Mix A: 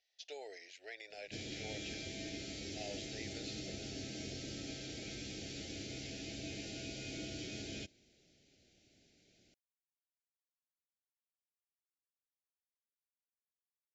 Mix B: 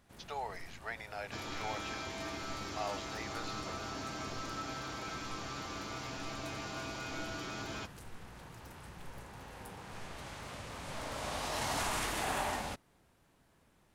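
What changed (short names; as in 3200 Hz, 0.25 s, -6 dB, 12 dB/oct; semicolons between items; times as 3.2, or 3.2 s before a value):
first sound: unmuted; master: remove Butterworth band-stop 1100 Hz, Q 0.63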